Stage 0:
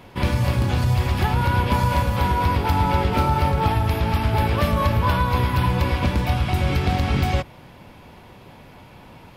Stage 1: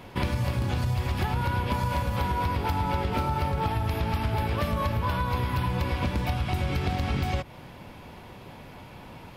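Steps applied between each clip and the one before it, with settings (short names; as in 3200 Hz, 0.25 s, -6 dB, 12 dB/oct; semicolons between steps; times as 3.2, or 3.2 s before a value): compressor 5:1, threshold -24 dBFS, peak gain reduction 9 dB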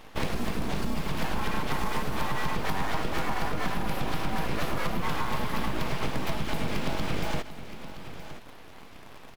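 in parallel at -11 dB: requantised 6-bit, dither none; on the sum: full-wave rectifier; echo 0.97 s -13 dB; gain -2 dB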